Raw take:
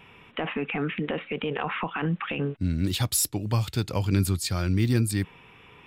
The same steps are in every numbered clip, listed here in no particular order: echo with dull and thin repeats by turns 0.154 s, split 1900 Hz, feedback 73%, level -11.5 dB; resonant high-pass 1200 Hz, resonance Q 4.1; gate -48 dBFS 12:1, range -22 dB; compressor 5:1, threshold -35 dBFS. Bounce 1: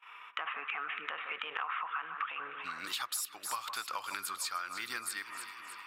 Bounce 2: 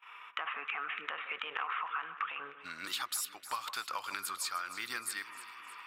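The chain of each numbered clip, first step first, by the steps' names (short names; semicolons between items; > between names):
resonant high-pass > gate > echo with dull and thin repeats by turns > compressor; resonant high-pass > compressor > gate > echo with dull and thin repeats by turns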